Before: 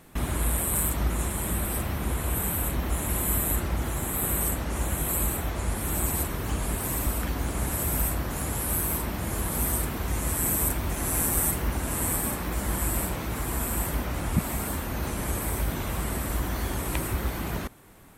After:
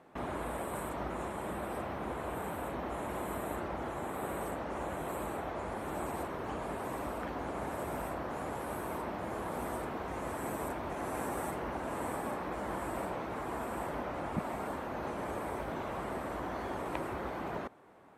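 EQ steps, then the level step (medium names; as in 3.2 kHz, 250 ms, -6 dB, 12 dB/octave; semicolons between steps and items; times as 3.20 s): band-pass filter 680 Hz, Q 0.91; 0.0 dB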